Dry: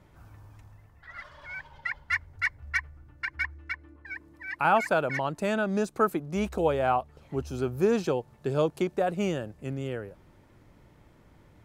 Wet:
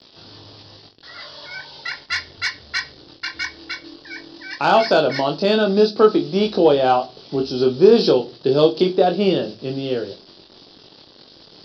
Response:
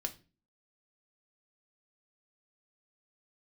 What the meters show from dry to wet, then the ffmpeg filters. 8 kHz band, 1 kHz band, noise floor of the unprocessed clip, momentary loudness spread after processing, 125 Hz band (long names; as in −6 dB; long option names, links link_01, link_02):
can't be measured, +7.5 dB, −58 dBFS, 19 LU, +5.5 dB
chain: -filter_complex "[0:a]highpass=110,acrusher=bits=8:mix=0:aa=0.000001,aresample=11025,aresample=44100,asplit=2[link_01][link_02];[link_02]highshelf=frequency=2900:gain=10.5[link_03];[1:a]atrim=start_sample=2205,asetrate=48510,aresample=44100,adelay=21[link_04];[link_03][link_04]afir=irnorm=-1:irlink=0,volume=-4.5dB[link_05];[link_01][link_05]amix=inputs=2:normalize=0,acontrast=88,aexciter=amount=9:drive=6.3:freq=3300,equalizer=frequency=380:width_type=o:width=2.4:gain=11.5,volume=-6.5dB"